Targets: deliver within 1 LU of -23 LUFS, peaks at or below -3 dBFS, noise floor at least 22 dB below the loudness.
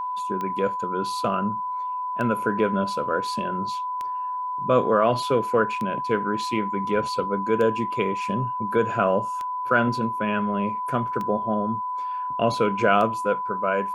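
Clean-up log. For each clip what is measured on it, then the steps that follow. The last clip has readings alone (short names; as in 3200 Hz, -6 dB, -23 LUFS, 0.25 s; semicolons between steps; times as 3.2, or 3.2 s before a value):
clicks 8; steady tone 1000 Hz; tone level -26 dBFS; loudness -24.5 LUFS; peak -6.0 dBFS; loudness target -23.0 LUFS
-> de-click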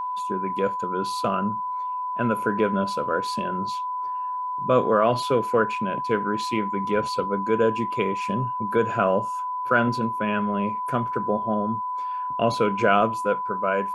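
clicks 0; steady tone 1000 Hz; tone level -26 dBFS
-> notch 1000 Hz, Q 30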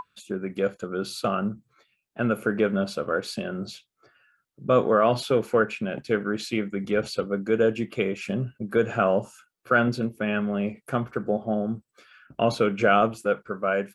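steady tone none; loudness -25.5 LUFS; peak -7.0 dBFS; loudness target -23.0 LUFS
-> gain +2.5 dB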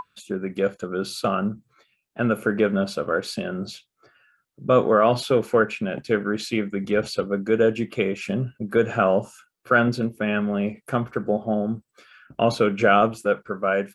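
loudness -23.0 LUFS; peak -4.5 dBFS; noise floor -76 dBFS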